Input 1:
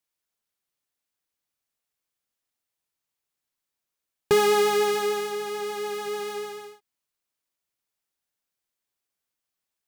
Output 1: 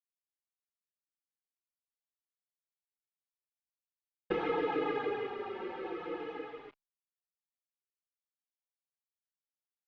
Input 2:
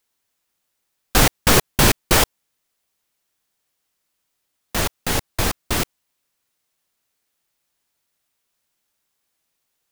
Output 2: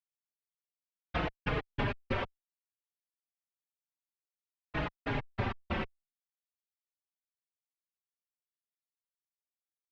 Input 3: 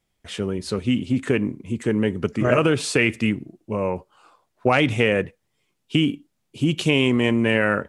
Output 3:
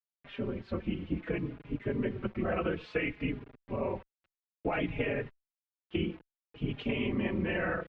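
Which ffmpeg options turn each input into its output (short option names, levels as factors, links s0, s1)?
-filter_complex "[0:a]afftfilt=real='hypot(re,im)*cos(2*PI*random(0))':imag='hypot(re,im)*sin(2*PI*random(1))':win_size=512:overlap=0.75,acompressor=threshold=0.0631:ratio=10,acrusher=bits=7:mix=0:aa=0.000001,lowpass=f=2800:w=0.5412,lowpass=f=2800:w=1.3066,asplit=2[s0][s1];[s1]adelay=4.4,afreqshift=-0.6[s2];[s0][s2]amix=inputs=2:normalize=1"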